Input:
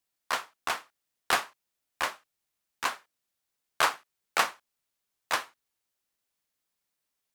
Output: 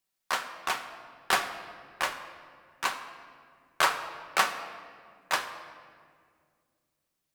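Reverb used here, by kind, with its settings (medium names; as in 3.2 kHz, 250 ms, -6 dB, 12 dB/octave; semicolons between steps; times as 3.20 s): simulated room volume 3900 m³, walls mixed, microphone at 1.1 m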